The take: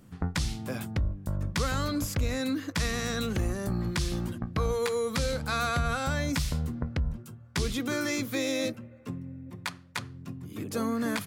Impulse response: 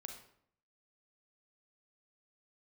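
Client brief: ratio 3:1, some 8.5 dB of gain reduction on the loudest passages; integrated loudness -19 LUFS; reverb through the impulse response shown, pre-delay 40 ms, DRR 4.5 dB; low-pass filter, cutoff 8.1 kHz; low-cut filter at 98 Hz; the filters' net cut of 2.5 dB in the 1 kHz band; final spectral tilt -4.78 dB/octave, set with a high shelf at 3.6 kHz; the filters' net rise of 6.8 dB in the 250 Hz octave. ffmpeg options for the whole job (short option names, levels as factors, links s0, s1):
-filter_complex "[0:a]highpass=98,lowpass=8100,equalizer=f=250:t=o:g=8.5,equalizer=f=1000:t=o:g=-5,highshelf=f=3600:g=7,acompressor=threshold=0.0251:ratio=3,asplit=2[s0][s1];[1:a]atrim=start_sample=2205,adelay=40[s2];[s1][s2]afir=irnorm=-1:irlink=0,volume=0.944[s3];[s0][s3]amix=inputs=2:normalize=0,volume=5.31"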